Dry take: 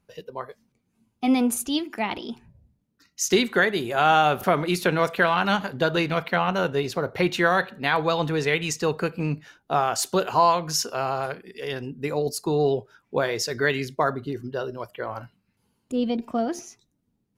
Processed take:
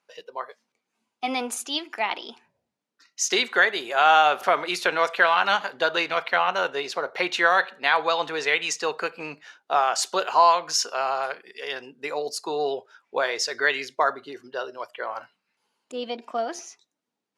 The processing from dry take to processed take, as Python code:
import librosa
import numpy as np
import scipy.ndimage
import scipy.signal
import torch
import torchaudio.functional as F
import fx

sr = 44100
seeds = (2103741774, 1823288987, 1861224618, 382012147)

y = fx.bandpass_edges(x, sr, low_hz=640.0, high_hz=7300.0)
y = y * 10.0 ** (3.0 / 20.0)